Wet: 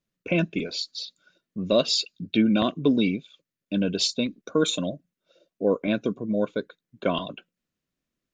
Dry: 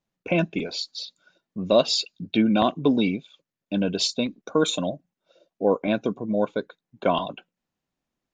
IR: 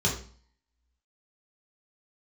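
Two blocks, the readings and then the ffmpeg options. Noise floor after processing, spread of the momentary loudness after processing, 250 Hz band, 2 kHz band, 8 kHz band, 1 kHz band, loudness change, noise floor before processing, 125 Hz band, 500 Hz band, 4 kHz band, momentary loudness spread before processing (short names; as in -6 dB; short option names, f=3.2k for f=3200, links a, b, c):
under -85 dBFS, 12 LU, -0.5 dB, -0.5 dB, 0.0 dB, -6.5 dB, -1.0 dB, under -85 dBFS, 0.0 dB, -2.5 dB, 0.0 dB, 13 LU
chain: -af "equalizer=f=830:w=2.8:g=-13"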